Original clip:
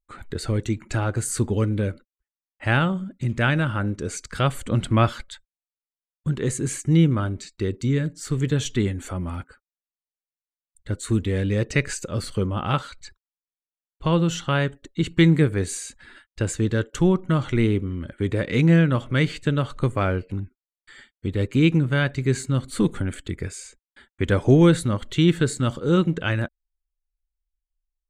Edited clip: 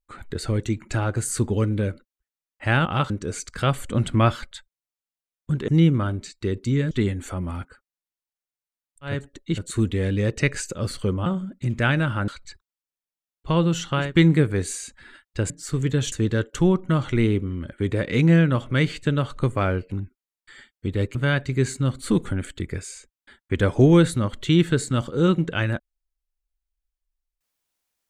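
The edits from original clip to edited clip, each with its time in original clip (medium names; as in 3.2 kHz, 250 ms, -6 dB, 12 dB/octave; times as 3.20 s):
2.85–3.87 s: swap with 12.59–12.84 s
6.45–6.85 s: delete
8.08–8.70 s: move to 16.52 s
14.62–15.08 s: move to 10.92 s, crossfade 0.24 s
21.55–21.84 s: delete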